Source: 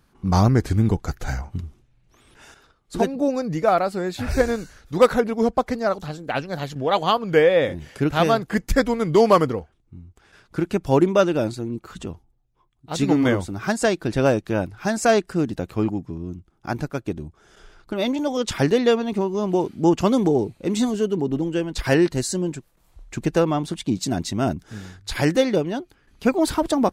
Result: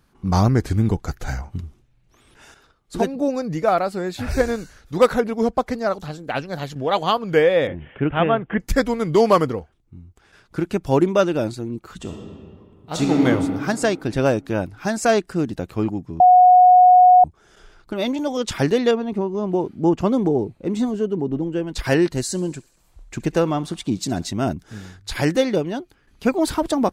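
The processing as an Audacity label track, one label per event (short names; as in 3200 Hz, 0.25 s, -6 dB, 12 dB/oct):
7.670000	8.600000	steep low-pass 3300 Hz 96 dB/oct
11.980000	13.260000	reverb throw, RT60 2.2 s, DRR 1 dB
16.200000	17.240000	bleep 729 Hz -7 dBFS
18.910000	21.670000	high shelf 2200 Hz -11 dB
22.250000	24.290000	thinning echo 67 ms, feedback 69%, high-pass 720 Hz, level -21.5 dB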